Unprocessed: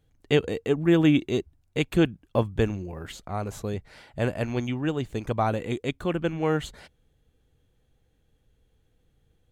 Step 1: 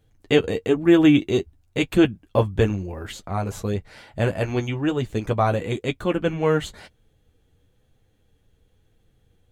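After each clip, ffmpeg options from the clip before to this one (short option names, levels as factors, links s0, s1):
-af "flanger=delay=9.1:depth=1.8:regen=-30:speed=1:shape=sinusoidal,volume=2.51"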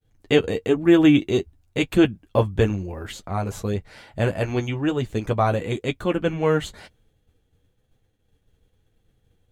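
-af "agate=range=0.0224:threshold=0.00141:ratio=3:detection=peak"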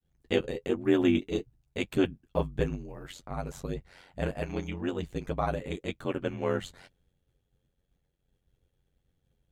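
-af "aeval=exprs='val(0)*sin(2*PI*45*n/s)':c=same,volume=0.473"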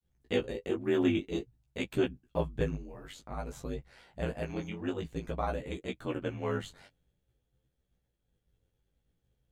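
-af "flanger=delay=15.5:depth=3.3:speed=0.52"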